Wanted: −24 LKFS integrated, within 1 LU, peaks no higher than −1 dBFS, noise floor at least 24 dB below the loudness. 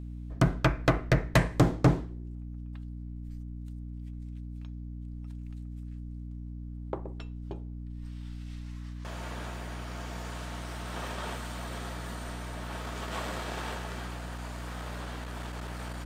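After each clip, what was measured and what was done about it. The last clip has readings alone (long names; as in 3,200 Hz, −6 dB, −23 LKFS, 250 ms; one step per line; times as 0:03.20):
mains hum 60 Hz; hum harmonics up to 300 Hz; level of the hum −37 dBFS; integrated loudness −34.5 LKFS; sample peak −14.0 dBFS; target loudness −24.0 LKFS
→ hum removal 60 Hz, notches 5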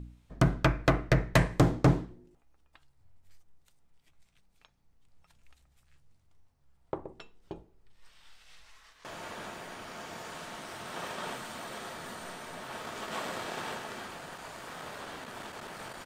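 mains hum none found; integrated loudness −33.5 LKFS; sample peak −14.0 dBFS; target loudness −24.0 LKFS
→ level +9.5 dB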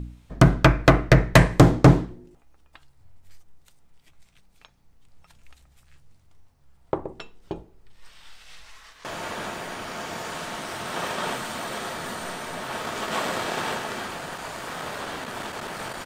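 integrated loudness −24.0 LKFS; sample peak −4.5 dBFS; background noise floor −58 dBFS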